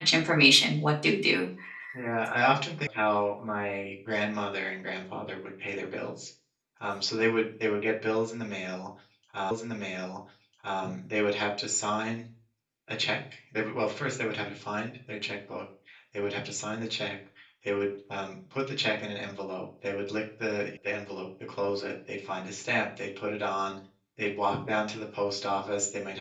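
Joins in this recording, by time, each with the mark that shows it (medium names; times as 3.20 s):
2.87 s: sound stops dead
9.51 s: repeat of the last 1.3 s
20.77 s: sound stops dead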